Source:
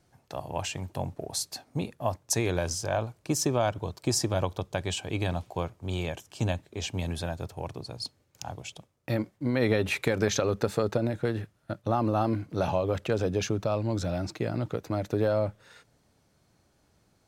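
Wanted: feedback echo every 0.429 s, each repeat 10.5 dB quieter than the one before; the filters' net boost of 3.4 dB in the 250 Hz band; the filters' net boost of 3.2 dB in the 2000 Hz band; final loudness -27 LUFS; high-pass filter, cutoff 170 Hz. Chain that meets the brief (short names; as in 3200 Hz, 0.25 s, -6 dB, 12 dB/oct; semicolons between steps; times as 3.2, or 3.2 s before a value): HPF 170 Hz; bell 250 Hz +5.5 dB; bell 2000 Hz +4 dB; feedback echo 0.429 s, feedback 30%, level -10.5 dB; gain +2 dB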